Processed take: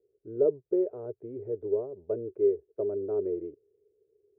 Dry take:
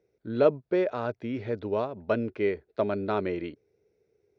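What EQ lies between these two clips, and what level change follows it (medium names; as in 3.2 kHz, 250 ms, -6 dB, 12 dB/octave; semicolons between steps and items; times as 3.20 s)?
resonant low-pass 410 Hz, resonance Q 4.9; peaking EQ 220 Hz -14 dB 0.8 oct; -7.5 dB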